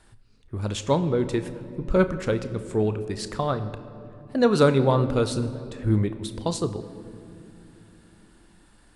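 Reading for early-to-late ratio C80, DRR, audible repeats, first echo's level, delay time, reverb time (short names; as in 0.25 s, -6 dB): 13.5 dB, 10.0 dB, none, none, none, 2.9 s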